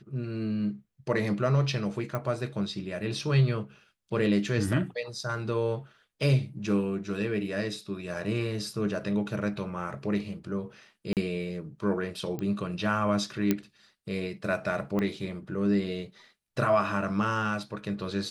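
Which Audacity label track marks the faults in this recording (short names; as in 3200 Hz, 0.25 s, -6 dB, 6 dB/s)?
2.150000	2.150000	pop -19 dBFS
11.130000	11.170000	gap 38 ms
12.390000	12.390000	pop -22 dBFS
13.510000	13.510000	pop -11 dBFS
14.990000	14.990000	pop -18 dBFS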